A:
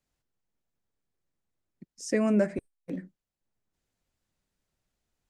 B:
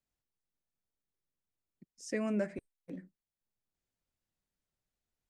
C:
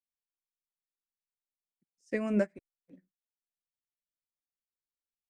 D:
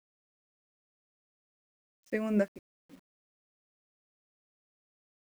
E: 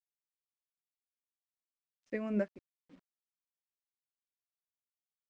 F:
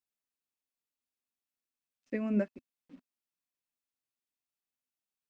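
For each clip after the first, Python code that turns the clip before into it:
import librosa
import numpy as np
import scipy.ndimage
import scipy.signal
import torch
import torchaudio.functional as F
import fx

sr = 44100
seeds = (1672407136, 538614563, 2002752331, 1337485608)

y1 = fx.dynamic_eq(x, sr, hz=2700.0, q=0.74, threshold_db=-46.0, ratio=4.0, max_db=4)
y1 = y1 * librosa.db_to_amplitude(-9.0)
y2 = fx.upward_expand(y1, sr, threshold_db=-48.0, expansion=2.5)
y2 = y2 * librosa.db_to_amplitude(6.5)
y3 = fx.quant_dither(y2, sr, seeds[0], bits=10, dither='none')
y4 = fx.air_absorb(y3, sr, metres=120.0)
y4 = y4 * librosa.db_to_amplitude(-4.5)
y5 = fx.small_body(y4, sr, hz=(250.0, 2600.0), ring_ms=45, db=9)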